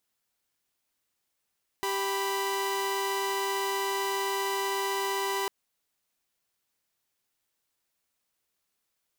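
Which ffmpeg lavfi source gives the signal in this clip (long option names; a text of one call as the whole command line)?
ffmpeg -f lavfi -i "aevalsrc='0.0398*((2*mod(392*t,1)-1)+(2*mod(987.77*t,1)-1))':duration=3.65:sample_rate=44100" out.wav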